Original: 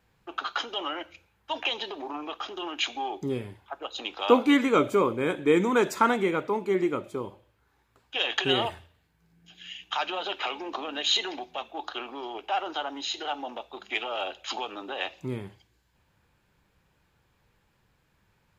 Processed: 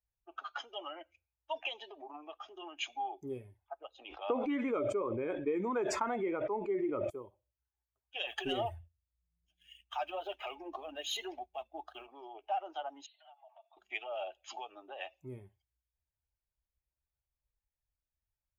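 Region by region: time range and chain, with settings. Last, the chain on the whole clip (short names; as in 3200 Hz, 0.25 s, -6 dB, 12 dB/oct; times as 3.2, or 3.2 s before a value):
3.88–7.1 air absorption 130 m + sustainer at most 23 dB/s
8.27–12.08 low shelf 230 Hz +10.5 dB + sample leveller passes 1 + flange 1.9 Hz, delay 0.9 ms, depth 3.2 ms, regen -51%
13.06–13.77 comb 4.4 ms, depth 48% + compressor 12:1, threshold -39 dBFS + brick-wall FIR band-pass 540–4600 Hz
whole clip: per-bin expansion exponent 1.5; fifteen-band EQ 160 Hz -10 dB, 630 Hz +5 dB, 1600 Hz -5 dB, 4000 Hz -10 dB; compressor 16:1, threshold -26 dBFS; gain -3.5 dB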